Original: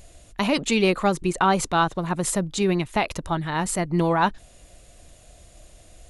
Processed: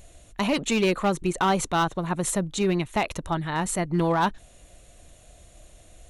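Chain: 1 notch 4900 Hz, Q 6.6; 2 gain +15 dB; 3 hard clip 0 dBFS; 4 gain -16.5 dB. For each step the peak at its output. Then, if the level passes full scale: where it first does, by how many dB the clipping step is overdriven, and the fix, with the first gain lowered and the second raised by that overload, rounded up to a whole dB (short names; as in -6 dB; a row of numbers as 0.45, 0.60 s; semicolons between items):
-7.5, +7.5, 0.0, -16.5 dBFS; step 2, 7.5 dB; step 2 +7 dB, step 4 -8.5 dB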